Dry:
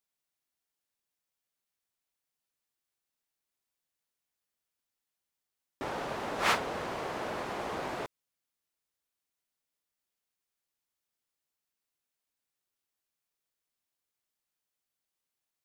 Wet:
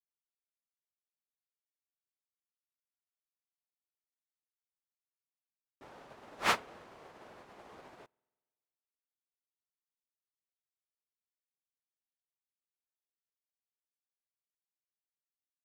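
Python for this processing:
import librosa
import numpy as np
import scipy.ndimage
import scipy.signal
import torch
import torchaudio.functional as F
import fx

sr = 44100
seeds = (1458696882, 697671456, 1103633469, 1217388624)

y = fx.rev_spring(x, sr, rt60_s=1.6, pass_ms=(47,), chirp_ms=50, drr_db=14.0)
y = fx.upward_expand(y, sr, threshold_db=-47.0, expansion=2.5)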